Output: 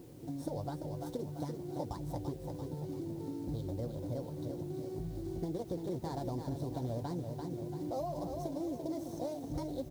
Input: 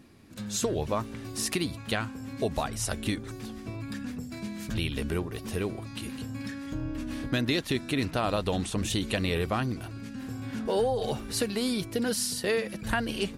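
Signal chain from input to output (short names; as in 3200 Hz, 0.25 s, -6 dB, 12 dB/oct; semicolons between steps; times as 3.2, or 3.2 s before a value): median filter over 25 samples; speed mistake 33 rpm record played at 45 rpm; HPF 110 Hz 6 dB/oct; low shelf 150 Hz +10 dB; notch 2600 Hz, Q 7.9; notch comb 210 Hz; feedback echo 0.34 s, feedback 46%, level -8 dB; compressor 2.5:1, threshold -44 dBFS, peak gain reduction 13.5 dB; band shelf 1900 Hz -13.5 dB; added noise white -70 dBFS; gain +3 dB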